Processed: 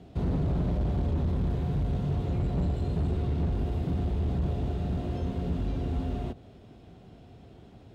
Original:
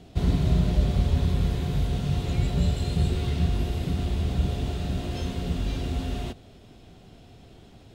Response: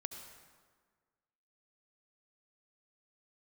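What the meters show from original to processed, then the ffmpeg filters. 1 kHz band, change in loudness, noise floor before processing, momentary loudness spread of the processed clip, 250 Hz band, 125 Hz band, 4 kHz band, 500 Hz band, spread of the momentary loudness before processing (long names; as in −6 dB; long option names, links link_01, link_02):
−2.5 dB, −3.5 dB, −51 dBFS, 3 LU, −2.0 dB, −3.5 dB, −13.5 dB, −1.5 dB, 7 LU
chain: -filter_complex "[0:a]highshelf=frequency=2500:gain=-11.5,acrossover=split=1200[link_01][link_02];[link_01]highpass=47[link_03];[link_02]acompressor=threshold=-53dB:ratio=6[link_04];[link_03][link_04]amix=inputs=2:normalize=0,asoftclip=type=hard:threshold=-24dB"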